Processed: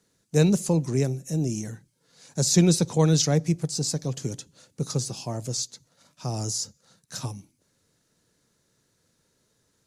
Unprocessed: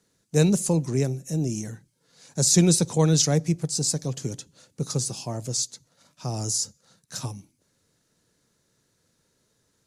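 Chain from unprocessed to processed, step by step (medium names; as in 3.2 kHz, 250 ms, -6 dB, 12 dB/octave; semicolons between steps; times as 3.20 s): dynamic bell 9.1 kHz, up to -7 dB, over -40 dBFS, Q 1.2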